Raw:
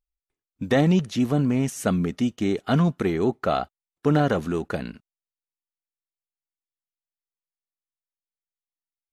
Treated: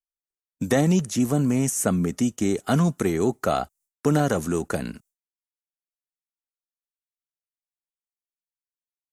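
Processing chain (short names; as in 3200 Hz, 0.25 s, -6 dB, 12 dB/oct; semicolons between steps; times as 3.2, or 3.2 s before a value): expander -52 dBFS; resonant high shelf 5300 Hz +12 dB, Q 1.5; three-band squash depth 40%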